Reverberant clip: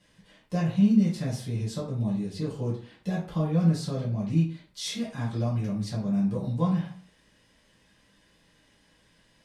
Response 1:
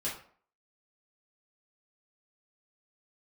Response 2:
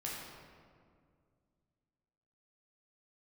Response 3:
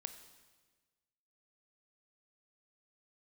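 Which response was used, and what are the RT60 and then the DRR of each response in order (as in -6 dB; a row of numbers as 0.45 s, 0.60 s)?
1; 0.50 s, 2.1 s, 1.4 s; -8.0 dB, -5.5 dB, 8.5 dB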